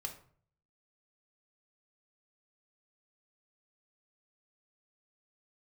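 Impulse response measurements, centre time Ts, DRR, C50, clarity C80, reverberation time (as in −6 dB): 13 ms, 3.0 dB, 10.5 dB, 14.5 dB, 0.50 s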